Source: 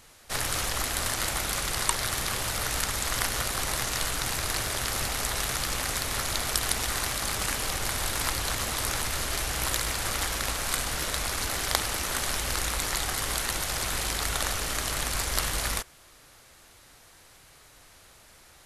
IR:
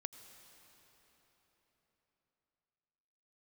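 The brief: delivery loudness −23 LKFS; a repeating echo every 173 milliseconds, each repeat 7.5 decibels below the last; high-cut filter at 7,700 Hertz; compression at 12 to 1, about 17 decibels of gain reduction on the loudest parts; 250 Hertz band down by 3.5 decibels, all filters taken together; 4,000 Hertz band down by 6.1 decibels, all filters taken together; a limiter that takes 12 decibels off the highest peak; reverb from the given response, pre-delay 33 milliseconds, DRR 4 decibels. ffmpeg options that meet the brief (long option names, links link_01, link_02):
-filter_complex "[0:a]lowpass=7700,equalizer=frequency=250:width_type=o:gain=-5,equalizer=frequency=4000:width_type=o:gain=-7.5,acompressor=threshold=-41dB:ratio=12,alimiter=level_in=10dB:limit=-24dB:level=0:latency=1,volume=-10dB,aecho=1:1:173|346|519|692|865:0.422|0.177|0.0744|0.0312|0.0131,asplit=2[link_01][link_02];[1:a]atrim=start_sample=2205,adelay=33[link_03];[link_02][link_03]afir=irnorm=-1:irlink=0,volume=-1dB[link_04];[link_01][link_04]amix=inputs=2:normalize=0,volume=21dB"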